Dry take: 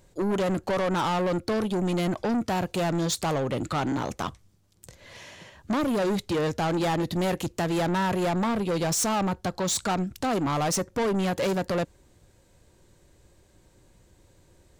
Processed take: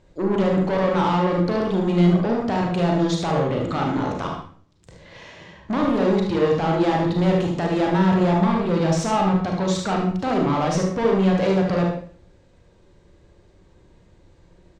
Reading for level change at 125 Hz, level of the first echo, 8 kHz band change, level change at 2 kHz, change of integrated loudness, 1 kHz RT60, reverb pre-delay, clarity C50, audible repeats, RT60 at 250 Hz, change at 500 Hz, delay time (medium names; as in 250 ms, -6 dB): +8.0 dB, -6.5 dB, -6.5 dB, +3.0 dB, +6.0 dB, 0.45 s, 31 ms, 2.0 dB, 1, 0.55 s, +6.0 dB, 74 ms